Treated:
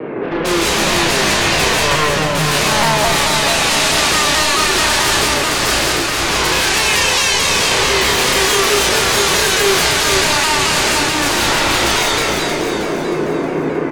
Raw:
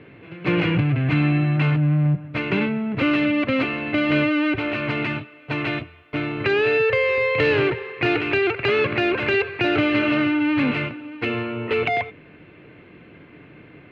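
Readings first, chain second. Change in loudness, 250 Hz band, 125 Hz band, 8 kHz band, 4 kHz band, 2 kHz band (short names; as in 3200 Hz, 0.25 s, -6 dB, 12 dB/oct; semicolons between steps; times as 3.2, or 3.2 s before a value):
+8.5 dB, 0.0 dB, -1.0 dB, n/a, +19.0 dB, +9.0 dB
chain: HPF 310 Hz 12 dB/oct; low-pass opened by the level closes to 860 Hz, open at -21 dBFS; in parallel at -2 dB: limiter -18.5 dBFS, peak gain reduction 8.5 dB; on the sum: compressor 5:1, threshold -29 dBFS, peak gain reduction 13.5 dB; sine folder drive 20 dB, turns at -15.5 dBFS; doubler 32 ms -4 dB; split-band echo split 1400 Hz, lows 0.462 s, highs 0.314 s, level -3.5 dB; non-linear reverb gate 0.21 s rising, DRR -3.5 dB; shaped vibrato saw down 4.6 Hz, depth 100 cents; gain -4 dB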